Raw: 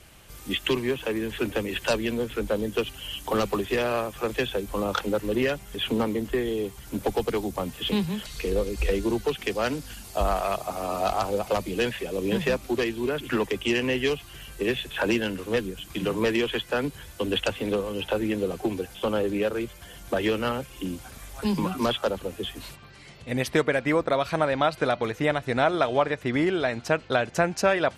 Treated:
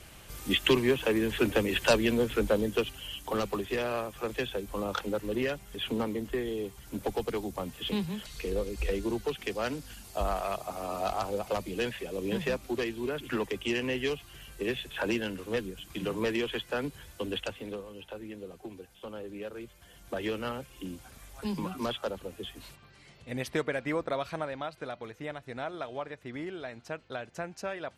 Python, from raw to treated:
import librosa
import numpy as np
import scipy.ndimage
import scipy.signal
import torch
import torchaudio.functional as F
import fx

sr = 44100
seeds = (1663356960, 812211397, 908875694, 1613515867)

y = fx.gain(x, sr, db=fx.line((2.41, 1.0), (3.22, -6.0), (17.15, -6.0), (18.04, -16.0), (19.17, -16.0), (20.29, -8.0), (24.21, -8.0), (24.68, -14.5)))